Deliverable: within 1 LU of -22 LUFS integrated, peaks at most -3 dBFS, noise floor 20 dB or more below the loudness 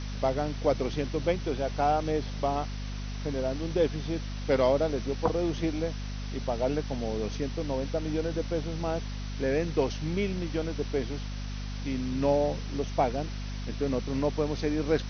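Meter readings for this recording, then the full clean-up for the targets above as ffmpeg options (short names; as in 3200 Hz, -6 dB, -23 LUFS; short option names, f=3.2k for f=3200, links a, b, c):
hum 50 Hz; harmonics up to 250 Hz; hum level -33 dBFS; noise floor -35 dBFS; noise floor target -51 dBFS; loudness -30.5 LUFS; peak -10.5 dBFS; loudness target -22.0 LUFS
-> -af "bandreject=f=50:t=h:w=6,bandreject=f=100:t=h:w=6,bandreject=f=150:t=h:w=6,bandreject=f=200:t=h:w=6,bandreject=f=250:t=h:w=6"
-af "afftdn=nr=16:nf=-35"
-af "volume=8.5dB,alimiter=limit=-3dB:level=0:latency=1"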